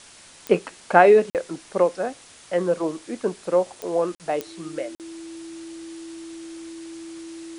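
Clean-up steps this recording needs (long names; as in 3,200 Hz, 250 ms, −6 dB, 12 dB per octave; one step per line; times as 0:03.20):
click removal
notch filter 330 Hz, Q 30
repair the gap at 0:01.30/0:04.15/0:04.95, 48 ms
noise reduction from a noise print 18 dB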